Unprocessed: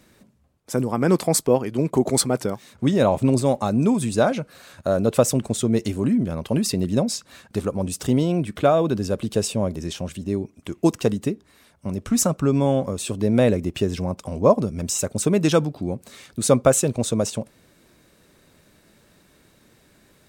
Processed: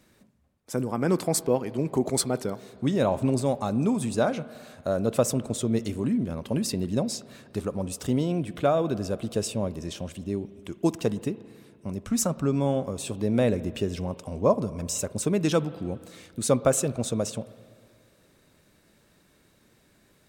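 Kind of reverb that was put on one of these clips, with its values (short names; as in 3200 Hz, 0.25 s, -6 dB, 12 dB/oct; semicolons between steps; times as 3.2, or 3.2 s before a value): spring tank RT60 2.1 s, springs 35/57 ms, chirp 40 ms, DRR 16 dB; gain -5.5 dB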